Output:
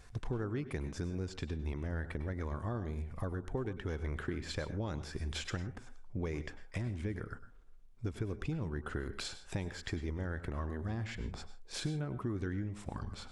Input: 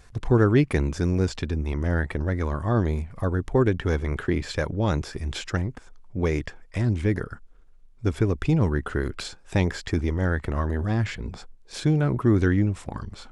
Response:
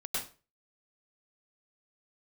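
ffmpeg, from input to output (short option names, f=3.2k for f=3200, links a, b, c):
-filter_complex "[0:a]acompressor=threshold=-30dB:ratio=6,asplit=2[a][b];[1:a]atrim=start_sample=2205,afade=t=out:st=0.22:d=0.01,atrim=end_sample=10143[c];[b][c]afir=irnorm=-1:irlink=0,volume=-14dB[d];[a][d]amix=inputs=2:normalize=0,volume=-5.5dB"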